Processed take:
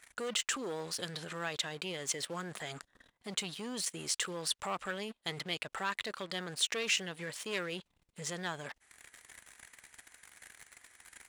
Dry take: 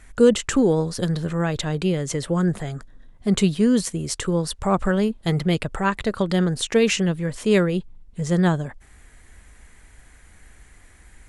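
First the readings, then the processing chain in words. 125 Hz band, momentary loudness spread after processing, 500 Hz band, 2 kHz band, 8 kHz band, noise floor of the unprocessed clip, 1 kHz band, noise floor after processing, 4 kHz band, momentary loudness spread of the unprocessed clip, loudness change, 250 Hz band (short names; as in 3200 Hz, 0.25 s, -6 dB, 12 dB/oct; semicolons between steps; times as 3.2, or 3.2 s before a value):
-25.0 dB, 21 LU, -19.5 dB, -8.0 dB, -5.5 dB, -50 dBFS, -12.5 dB, -81 dBFS, -4.5 dB, 8 LU, -14.5 dB, -24.5 dB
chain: transient shaper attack 0 dB, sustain -5 dB; sample leveller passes 2; reverse; compressor 6:1, threshold -22 dBFS, peak gain reduction 13.5 dB; reverse; limiter -23 dBFS, peak gain reduction 11 dB; dynamic EQ 3000 Hz, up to +4 dB, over -50 dBFS, Q 0.94; HPF 1300 Hz 6 dB/oct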